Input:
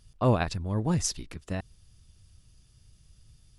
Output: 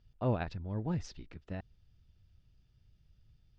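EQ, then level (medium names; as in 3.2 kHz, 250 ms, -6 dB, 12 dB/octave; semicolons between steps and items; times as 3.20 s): low-pass 7.6 kHz; distance through air 210 m; band-stop 1.1 kHz, Q 7.7; -7.5 dB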